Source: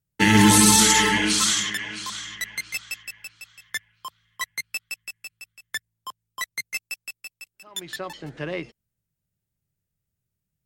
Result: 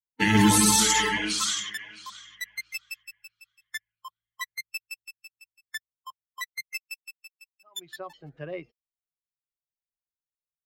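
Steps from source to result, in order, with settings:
spectral dynamics exaggerated over time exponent 1.5
level −2.5 dB

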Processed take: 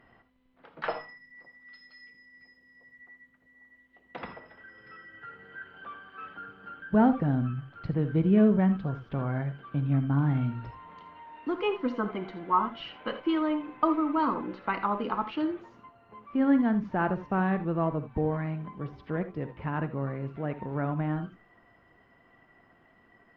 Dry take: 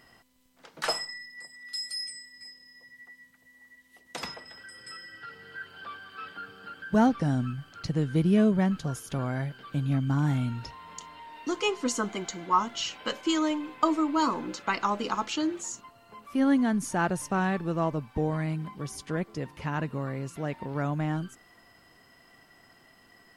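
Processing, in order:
Gaussian smoothing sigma 3.2 samples
reverb whose tail is shaped and stops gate 100 ms rising, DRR 10 dB
Opus 48 kbit/s 48,000 Hz

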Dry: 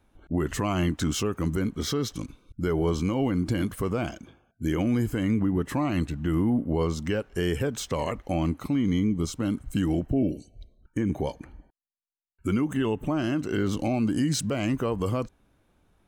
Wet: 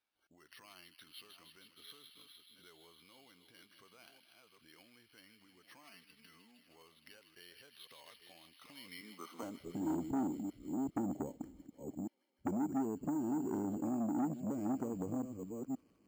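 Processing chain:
delay that plays each chunk backwards 525 ms, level −12.5 dB
0:05.83–0:06.64: comb filter 4.5 ms, depth 89%
0:09.01–0:09.43: elliptic high-pass filter 190 Hz
downward compressor 12 to 1, threshold −30 dBFS, peak gain reduction 13.5 dB
band-pass filter sweep 6,700 Hz → 270 Hz, 0:08.44–0:09.95
delay with a high-pass on its return 156 ms, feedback 84%, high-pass 3,200 Hz, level −4 dB
bad sample-rate conversion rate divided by 6×, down filtered, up hold
saturating transformer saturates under 630 Hz
level +3 dB

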